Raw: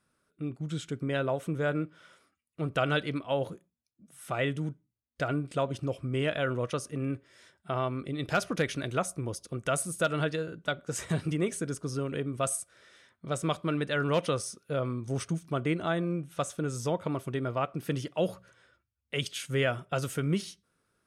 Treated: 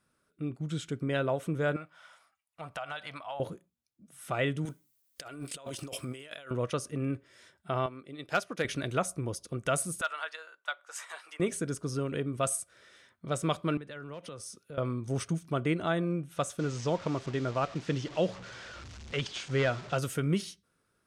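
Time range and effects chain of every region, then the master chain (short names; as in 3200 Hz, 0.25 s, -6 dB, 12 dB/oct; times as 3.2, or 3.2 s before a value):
1.76–3.4 resonant low shelf 530 Hz -12 dB, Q 3 + compressor 4:1, threshold -36 dBFS
4.65–6.51 RIAA curve recording + negative-ratio compressor -43 dBFS
7.86–8.65 HPF 300 Hz 6 dB/oct + upward expander, over -44 dBFS
10.01–11.4 HPF 940 Hz 24 dB/oct + tilt shelf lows +5.5 dB, about 1200 Hz
13.77–14.78 compressor 5:1, threshold -41 dBFS + three-band expander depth 40%
16.59–19.97 delta modulation 64 kbps, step -39.5 dBFS + LPF 6500 Hz 24 dB/oct
whole clip: dry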